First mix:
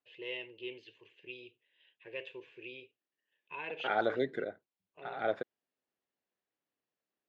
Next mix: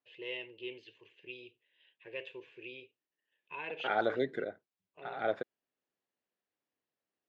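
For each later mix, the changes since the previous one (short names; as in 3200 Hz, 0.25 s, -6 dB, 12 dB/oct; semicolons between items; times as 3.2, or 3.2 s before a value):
none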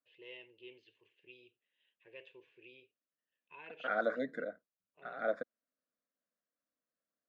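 first voice -10.5 dB; second voice: add fixed phaser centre 570 Hz, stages 8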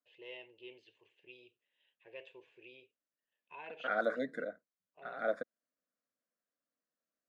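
first voice: add bell 730 Hz +10.5 dB 0.73 oct; master: remove air absorption 74 m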